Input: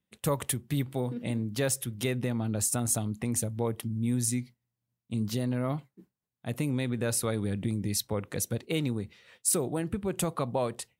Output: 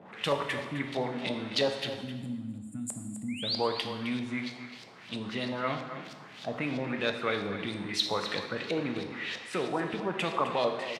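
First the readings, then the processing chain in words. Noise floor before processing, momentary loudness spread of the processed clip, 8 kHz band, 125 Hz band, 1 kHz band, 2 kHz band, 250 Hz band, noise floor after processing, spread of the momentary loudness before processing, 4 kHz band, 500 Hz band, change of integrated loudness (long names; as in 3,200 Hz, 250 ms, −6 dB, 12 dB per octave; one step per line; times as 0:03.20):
below −85 dBFS, 10 LU, −15.0 dB, −10.0 dB, +5.0 dB, +6.5 dB, −3.0 dB, −49 dBFS, 6 LU, +7.0 dB, +1.0 dB, −2.0 dB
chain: converter with a step at zero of −39.5 dBFS
high-pass filter 190 Hz 12 dB per octave
gain on a spectral selection 0:02.02–0:03.43, 310–6,900 Hz −28 dB
tilt shelving filter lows −5 dB, about 940 Hz
sound drawn into the spectrogram rise, 0:03.28–0:03.63, 2,000–6,400 Hz −37 dBFS
auto-filter low-pass saw up 3.1 Hz 600–5,100 Hz
on a send: single-tap delay 260 ms −11.5 dB
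on the sum: dense smooth reverb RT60 1.2 s, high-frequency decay 0.95×, DRR 5 dB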